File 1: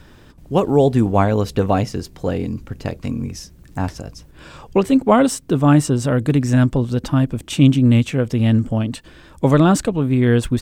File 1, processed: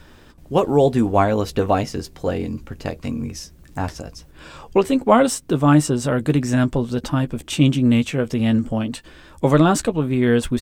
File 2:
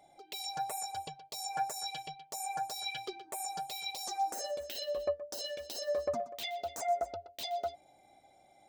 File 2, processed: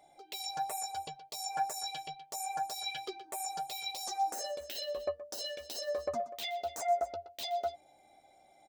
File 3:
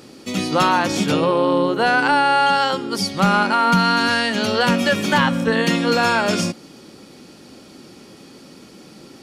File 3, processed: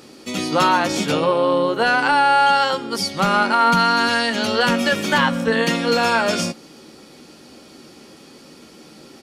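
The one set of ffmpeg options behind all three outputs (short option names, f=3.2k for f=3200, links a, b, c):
-filter_complex "[0:a]equalizer=f=120:w=0.61:g=-4.5,asplit=2[a][b];[b]adelay=13,volume=-10dB[c];[a][c]amix=inputs=2:normalize=0"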